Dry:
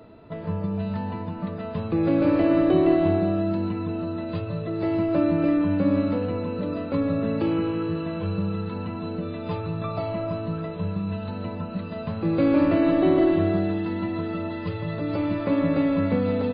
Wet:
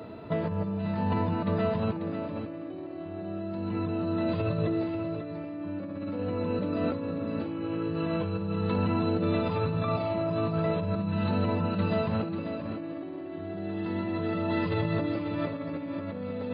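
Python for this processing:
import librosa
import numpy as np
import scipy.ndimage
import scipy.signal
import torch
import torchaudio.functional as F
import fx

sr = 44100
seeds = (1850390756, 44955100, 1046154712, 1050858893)

y = scipy.signal.sosfilt(scipy.signal.butter(2, 79.0, 'highpass', fs=sr, output='sos'), x)
y = fx.over_compress(y, sr, threshold_db=-32.0, ratio=-1.0)
y = y + 10.0 ** (-8.5 / 20.0) * np.pad(y, (int(541 * sr / 1000.0), 0))[:len(y)]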